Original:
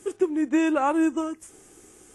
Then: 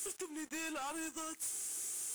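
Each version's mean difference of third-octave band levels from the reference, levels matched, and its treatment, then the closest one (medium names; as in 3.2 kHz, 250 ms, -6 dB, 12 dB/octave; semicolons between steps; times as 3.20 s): 13.0 dB: compression 2.5:1, threshold -35 dBFS, peak gain reduction 12 dB; pre-emphasis filter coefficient 0.97; waveshaping leveller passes 5; trim -2 dB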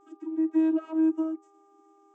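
8.5 dB: waveshaping leveller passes 1; vocoder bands 32, saw 319 Hz; mains buzz 400 Hz, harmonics 3, -57 dBFS -1 dB/octave; trim -4 dB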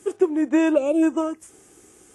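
2.5 dB: high-pass 48 Hz; time-frequency box 0.76–1.03 s, 670–2200 Hz -22 dB; dynamic bell 660 Hz, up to +8 dB, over -38 dBFS, Q 0.84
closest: third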